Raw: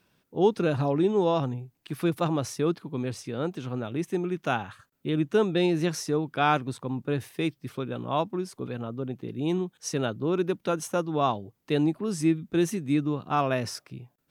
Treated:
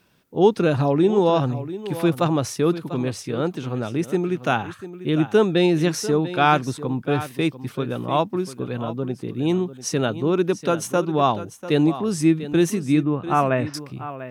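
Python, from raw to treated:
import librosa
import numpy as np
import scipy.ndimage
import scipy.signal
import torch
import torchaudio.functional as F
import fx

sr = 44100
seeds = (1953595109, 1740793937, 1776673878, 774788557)

y = fx.lowpass(x, sr, hz=2600.0, slope=24, at=(13.03, 13.74))
y = y + 10.0 ** (-13.5 / 20.0) * np.pad(y, (int(694 * sr / 1000.0), 0))[:len(y)]
y = F.gain(torch.from_numpy(y), 6.0).numpy()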